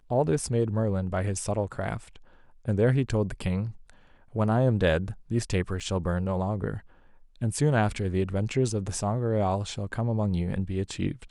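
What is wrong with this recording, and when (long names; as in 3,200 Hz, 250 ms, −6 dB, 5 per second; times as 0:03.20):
0:05.80–0:05.81: drop-out 5.5 ms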